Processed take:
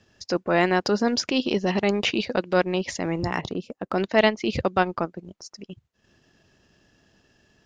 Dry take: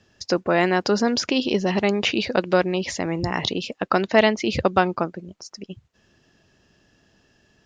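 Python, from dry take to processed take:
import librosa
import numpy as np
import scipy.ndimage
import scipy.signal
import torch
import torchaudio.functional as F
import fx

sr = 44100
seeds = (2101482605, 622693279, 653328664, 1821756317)

y = fx.peak_eq(x, sr, hz=3200.0, db=-12.0, octaves=2.4, at=(3.41, 3.98))
y = fx.transient(y, sr, attack_db=-5, sustain_db=-9)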